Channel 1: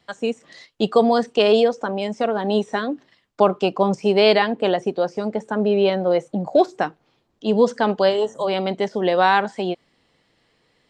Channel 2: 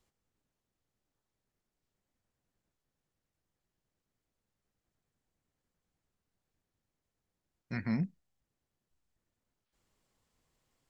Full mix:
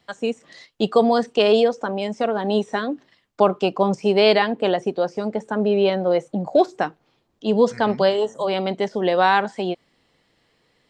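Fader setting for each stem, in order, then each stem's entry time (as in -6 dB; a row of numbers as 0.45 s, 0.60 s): -0.5 dB, -3.5 dB; 0.00 s, 0.00 s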